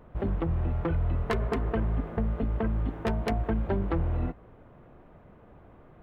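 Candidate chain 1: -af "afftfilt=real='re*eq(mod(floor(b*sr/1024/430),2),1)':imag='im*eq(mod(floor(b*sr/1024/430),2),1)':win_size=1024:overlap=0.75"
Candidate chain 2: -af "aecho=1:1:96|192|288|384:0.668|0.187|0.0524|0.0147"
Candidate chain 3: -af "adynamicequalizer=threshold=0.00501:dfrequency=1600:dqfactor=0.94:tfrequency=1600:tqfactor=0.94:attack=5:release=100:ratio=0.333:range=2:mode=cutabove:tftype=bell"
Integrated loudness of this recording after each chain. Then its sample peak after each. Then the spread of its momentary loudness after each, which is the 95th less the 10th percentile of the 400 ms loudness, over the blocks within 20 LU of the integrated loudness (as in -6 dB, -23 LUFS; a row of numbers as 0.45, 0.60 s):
-39.0, -28.5, -30.5 LUFS; -18.0, -12.5, -15.0 dBFS; 9, 3, 2 LU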